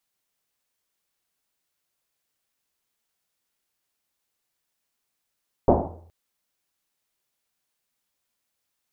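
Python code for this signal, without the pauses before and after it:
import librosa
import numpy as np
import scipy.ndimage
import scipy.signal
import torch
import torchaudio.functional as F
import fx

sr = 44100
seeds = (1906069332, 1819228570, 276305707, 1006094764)

y = fx.risset_drum(sr, seeds[0], length_s=0.42, hz=84.0, decay_s=0.96, noise_hz=470.0, noise_width_hz=760.0, noise_pct=75)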